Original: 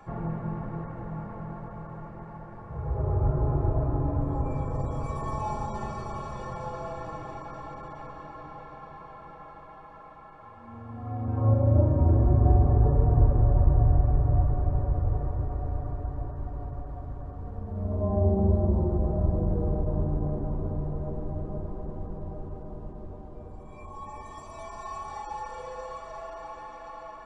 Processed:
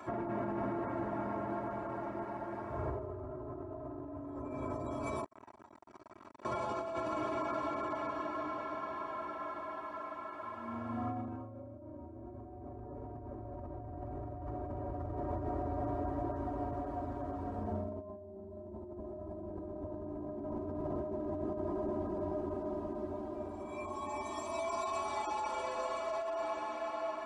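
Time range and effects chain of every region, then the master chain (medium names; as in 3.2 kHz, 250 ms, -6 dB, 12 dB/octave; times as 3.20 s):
5.24–6.45 s: gate -31 dBFS, range -14 dB + compression 12:1, threshold -46 dBFS + transformer saturation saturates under 760 Hz
whole clip: high-pass 160 Hz 12 dB/octave; comb 3.1 ms, depth 91%; compressor with a negative ratio -38 dBFS, ratio -1; trim -2 dB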